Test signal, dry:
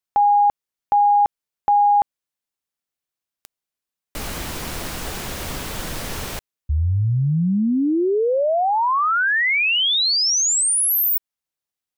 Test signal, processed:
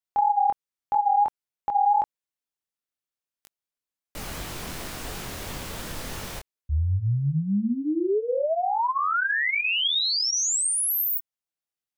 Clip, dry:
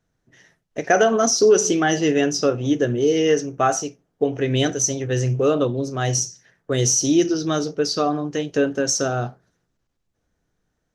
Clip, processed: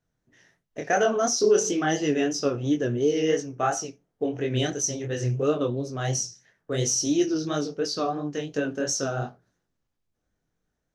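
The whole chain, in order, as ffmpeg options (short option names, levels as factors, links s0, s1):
-af "flanger=delay=20:depth=5.8:speed=2.9,volume=0.708"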